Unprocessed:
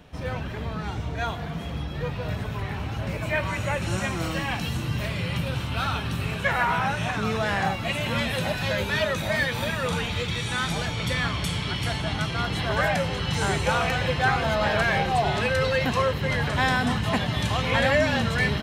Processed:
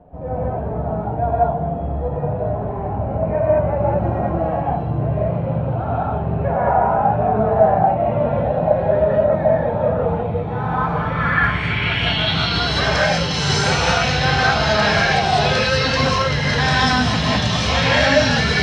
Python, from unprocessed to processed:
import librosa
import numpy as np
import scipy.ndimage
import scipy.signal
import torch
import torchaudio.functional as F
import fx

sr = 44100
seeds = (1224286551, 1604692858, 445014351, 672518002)

y = fx.rev_gated(x, sr, seeds[0], gate_ms=230, shape='rising', drr_db=-6.0)
y = fx.filter_sweep_lowpass(y, sr, from_hz=700.0, to_hz=5400.0, start_s=10.45, end_s=12.78, q=3.4)
y = y * 10.0 ** (-1.0 / 20.0)